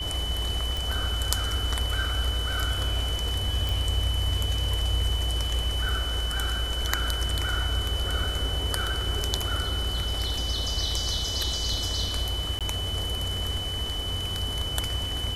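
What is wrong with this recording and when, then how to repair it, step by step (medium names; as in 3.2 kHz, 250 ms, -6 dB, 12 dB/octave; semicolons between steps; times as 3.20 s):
whine 3 kHz -31 dBFS
0.77 s: pop
3.69 s: pop
12.59–12.61 s: dropout 17 ms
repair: de-click; band-stop 3 kHz, Q 30; interpolate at 12.59 s, 17 ms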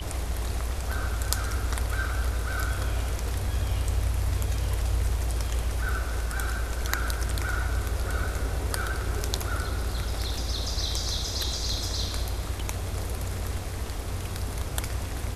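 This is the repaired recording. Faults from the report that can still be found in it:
nothing left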